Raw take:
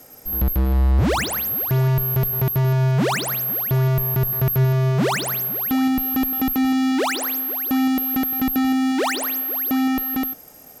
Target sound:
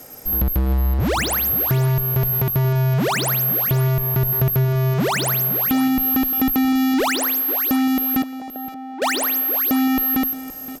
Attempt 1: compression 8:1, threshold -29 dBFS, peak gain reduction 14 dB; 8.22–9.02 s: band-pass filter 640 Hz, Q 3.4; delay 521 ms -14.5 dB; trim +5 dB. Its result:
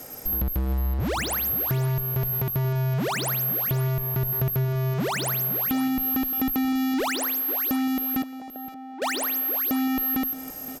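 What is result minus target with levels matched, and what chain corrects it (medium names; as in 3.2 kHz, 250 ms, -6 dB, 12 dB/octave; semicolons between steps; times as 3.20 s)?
compression: peak gain reduction +6.5 dB
compression 8:1, threshold -21.5 dBFS, peak gain reduction 7.5 dB; 8.22–9.02 s: band-pass filter 640 Hz, Q 3.4; delay 521 ms -14.5 dB; trim +5 dB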